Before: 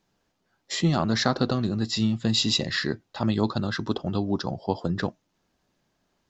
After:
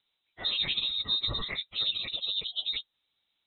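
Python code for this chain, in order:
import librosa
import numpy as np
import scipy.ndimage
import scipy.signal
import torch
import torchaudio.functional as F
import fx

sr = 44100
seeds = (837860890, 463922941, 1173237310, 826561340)

y = fx.freq_invert(x, sr, carrier_hz=3900)
y = fx.stretch_vocoder_free(y, sr, factor=0.55)
y = y * librosa.db_to_amplitude(-3.0)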